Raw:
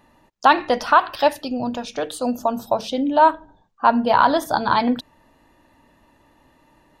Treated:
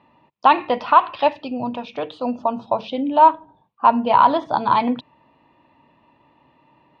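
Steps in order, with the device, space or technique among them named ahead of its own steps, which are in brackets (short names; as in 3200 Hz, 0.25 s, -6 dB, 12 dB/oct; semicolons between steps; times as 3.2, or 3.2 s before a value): guitar cabinet (speaker cabinet 100–3600 Hz, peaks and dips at 140 Hz +5 dB, 1000 Hz +6 dB, 1600 Hz -8 dB, 2500 Hz +5 dB); gain -1.5 dB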